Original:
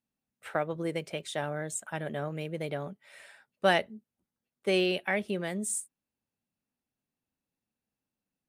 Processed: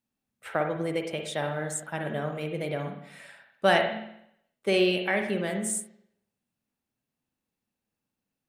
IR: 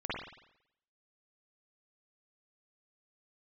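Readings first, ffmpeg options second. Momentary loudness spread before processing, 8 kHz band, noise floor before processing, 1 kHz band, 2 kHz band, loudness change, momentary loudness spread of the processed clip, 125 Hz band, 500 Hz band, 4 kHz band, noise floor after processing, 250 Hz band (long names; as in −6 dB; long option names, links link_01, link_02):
16 LU, +2.0 dB, below −85 dBFS, +3.5 dB, +3.5 dB, +3.0 dB, 18 LU, +3.0 dB, +3.5 dB, +3.0 dB, below −85 dBFS, +3.5 dB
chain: -filter_complex "[0:a]asplit=2[link_01][link_02];[1:a]atrim=start_sample=2205[link_03];[link_02][link_03]afir=irnorm=-1:irlink=0,volume=-6.5dB[link_04];[link_01][link_04]amix=inputs=2:normalize=0"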